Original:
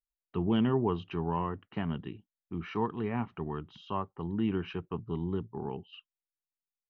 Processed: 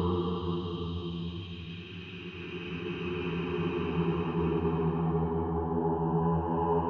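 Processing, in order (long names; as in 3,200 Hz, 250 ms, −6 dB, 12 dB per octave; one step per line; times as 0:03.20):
extreme stretch with random phases 20×, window 0.25 s, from 0:00.96
level that may rise only so fast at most 150 dB per second
level +3.5 dB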